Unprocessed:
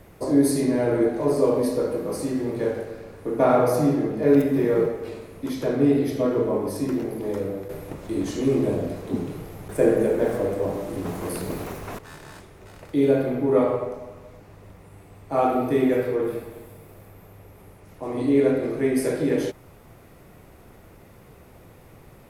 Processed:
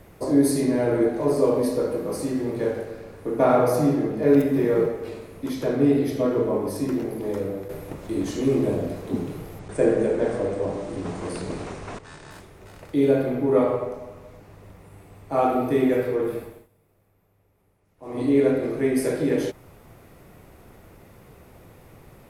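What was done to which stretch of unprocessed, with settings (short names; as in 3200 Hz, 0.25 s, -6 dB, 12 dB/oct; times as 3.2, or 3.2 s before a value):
9.59–12.31 elliptic low-pass 9100 Hz
16.43–18.22 dip -18.5 dB, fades 0.25 s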